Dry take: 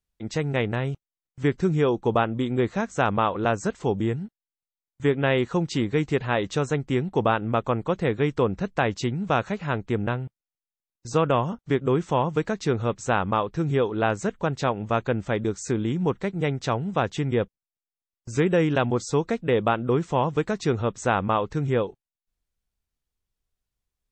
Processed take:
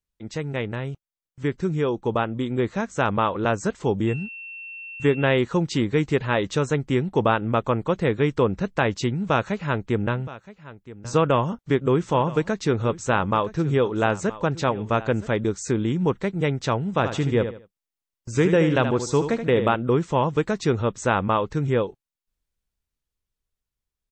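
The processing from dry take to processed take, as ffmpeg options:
ffmpeg -i in.wav -filter_complex "[0:a]asettb=1/sr,asplit=3[link_01][link_02][link_03];[link_01]atrim=end=4.074[link_04];[link_02]atrim=start=4.07:end=5.29,asetpts=PTS-STARTPTS,afade=type=in:duration=0.004:curve=qsin,afade=type=out:start_time=1.216:duration=0.004:curve=qsin,aeval=exprs='val(0)+0.0141*sin(2*PI*2700*n/s)':channel_layout=same[link_05];[link_03]atrim=start=5.286[link_06];[link_04][link_05]acrossfade=duration=0.004:curve1=hsin:curve2=qsin[link_07];[link_07][link_06]acrossfade=duration=0.004:curve1=qsin:curve2=hsin,asplit=3[link_08][link_09][link_10];[link_08]afade=type=out:start_time=10.15:duration=0.02[link_11];[link_09]aecho=1:1:970:0.133,afade=type=in:start_time=10.15:duration=0.02,afade=type=out:start_time=15.3:duration=0.02[link_12];[link_10]afade=type=in:start_time=15.3:duration=0.02[link_13];[link_11][link_12][link_13]amix=inputs=3:normalize=0,asplit=3[link_14][link_15][link_16];[link_14]afade=type=out:start_time=16.97:duration=0.02[link_17];[link_15]aecho=1:1:77|154|231:0.355|0.103|0.0298,afade=type=in:start_time=16.97:duration=0.02,afade=type=out:start_time=19.74:duration=0.02[link_18];[link_16]afade=type=in:start_time=19.74:duration=0.02[link_19];[link_17][link_18][link_19]amix=inputs=3:normalize=0,bandreject=frequency=730:width=12,dynaudnorm=framelen=170:gausssize=31:maxgain=6dB,volume=-3dB" out.wav

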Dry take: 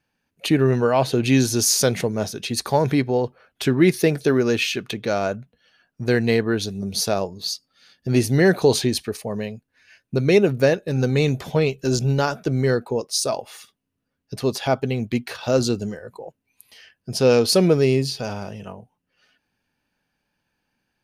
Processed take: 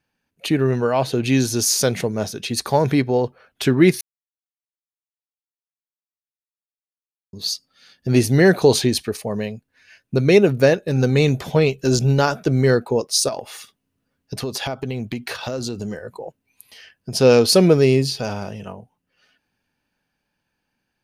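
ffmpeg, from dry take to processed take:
ffmpeg -i in.wav -filter_complex "[0:a]asettb=1/sr,asplit=3[link_01][link_02][link_03];[link_01]atrim=end=13.284[link_04];[link_02]atrim=start=13.28:end=17.14,asetpts=PTS-STARTPTS,afade=type=in:duration=0.004:curve=qsin,afade=type=out:start_time=3.856:duration=0.004:curve=qsin,acompressor=threshold=-26dB:ratio=10:attack=3.2:release=140:knee=1:detection=peak[link_05];[link_03]atrim=start=17.136[link_06];[link_04][link_05]acrossfade=duration=0.004:curve1=hsin:curve2=qsin[link_07];[link_07][link_06]acrossfade=duration=0.004:curve1=qsin:curve2=hsin,asplit=3[link_08][link_09][link_10];[link_08]atrim=end=4.01,asetpts=PTS-STARTPTS,afade=type=out:start_time=4.006:duration=0.004:curve=hsin[link_11];[link_09]atrim=start=4.01:end=7.33,asetpts=PTS-STARTPTS,volume=0[link_12];[link_10]atrim=start=7.33,asetpts=PTS-STARTPTS,afade=type=in:duration=0.004:curve=hsin[link_13];[link_11][link_12][link_13]concat=n=3:v=0:a=1,dynaudnorm=framelen=430:gausssize=11:maxgain=11.5dB,volume=-1dB" out.wav

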